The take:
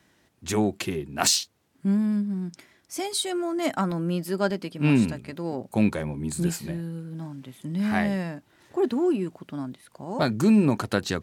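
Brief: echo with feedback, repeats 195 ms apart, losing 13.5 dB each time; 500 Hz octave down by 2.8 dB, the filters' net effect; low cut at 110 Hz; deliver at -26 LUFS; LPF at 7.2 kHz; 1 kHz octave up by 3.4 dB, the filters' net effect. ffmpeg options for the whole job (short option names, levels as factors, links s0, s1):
-af "highpass=110,lowpass=7200,equalizer=f=500:t=o:g=-6,equalizer=f=1000:t=o:g=7,aecho=1:1:195|390:0.211|0.0444,volume=1.12"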